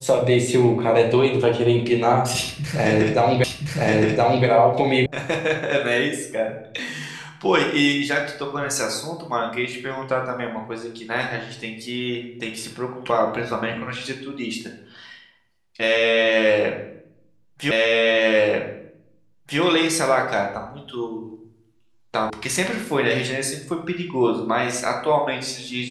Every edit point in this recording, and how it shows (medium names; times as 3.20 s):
3.44 s: repeat of the last 1.02 s
5.06 s: sound stops dead
17.71 s: repeat of the last 1.89 s
22.30 s: sound stops dead